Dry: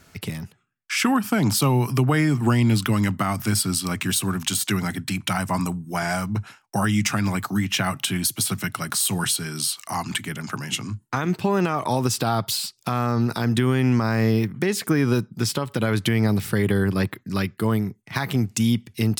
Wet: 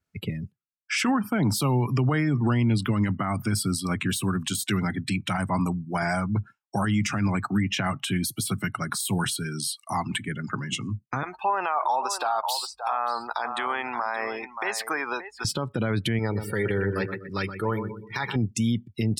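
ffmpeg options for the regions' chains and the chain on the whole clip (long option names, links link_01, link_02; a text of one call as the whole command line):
ffmpeg -i in.wav -filter_complex "[0:a]asettb=1/sr,asplit=3[link_01][link_02][link_03];[link_01]atrim=end=11.234[link_04];[link_02]atrim=start=11.23:end=15.45,asetpts=PTS-STARTPTS,afade=type=in:duration=0.004:curve=qsin,afade=type=out:start_time=4.216:duration=0.004:curve=qsin,highpass=frequency=840:width_type=q:width=2.4,aecho=1:1:576:0.316,atrim=end_sample=186102,aeval=exprs='val(0)+0.002*(sin(2*PI*50*n/s)+sin(2*PI*2*50*n/s)/2+sin(2*PI*3*50*n/s)/3+sin(2*PI*4*50*n/s)/4+sin(2*PI*5*50*n/s)/5)':channel_layout=same[link_05];[link_03]atrim=start=15.446[link_06];[link_04][link_05]acrossfade=duration=0.004:curve1=hsin:curve2=qsin[link_07];[link_07][link_06]acrossfade=duration=0.004:curve1=qsin:curve2=hsin,asettb=1/sr,asplit=3[link_08][link_09][link_10];[link_08]atrim=end=16.194[link_11];[link_09]atrim=start=16.19:end=18.36,asetpts=PTS-STARTPTS,afade=type=in:duration=0.004:curve=qsin,afade=type=out:start_time=2.166:duration=0.004:curve=qsin,lowshelf=frequency=410:gain=-8.5,aecho=1:1:2.2:0.39,atrim=end_sample=95697,aecho=1:1:123|246|369|492|615|738:0.398|0.199|0.0995|0.0498|0.0249|0.0124,atrim=end_sample=95697[link_12];[link_10]atrim=start=18.356[link_13];[link_11][link_12]acrossfade=duration=0.004:curve1=hsin:curve2=qsin[link_14];[link_14][link_13]acrossfade=duration=0.004:curve1=qsin:curve2=hsin,afftdn=noise_reduction=31:noise_floor=-34,alimiter=limit=-16dB:level=0:latency=1:release=34,adynamicequalizer=threshold=0.00794:dfrequency=3400:dqfactor=0.7:tfrequency=3400:tqfactor=0.7:attack=5:release=100:ratio=0.375:range=2:mode=cutabove:tftype=highshelf" out.wav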